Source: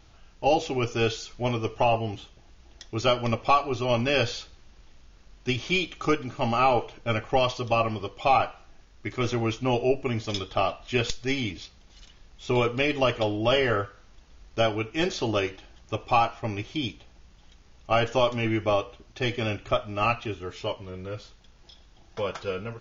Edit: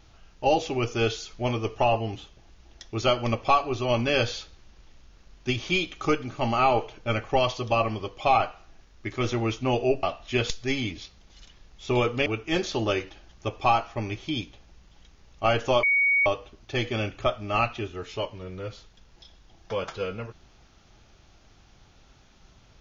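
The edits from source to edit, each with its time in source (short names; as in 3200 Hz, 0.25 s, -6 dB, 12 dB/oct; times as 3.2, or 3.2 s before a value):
10.03–10.63 cut
12.86–14.73 cut
18.3–18.73 bleep 2240 Hz -18.5 dBFS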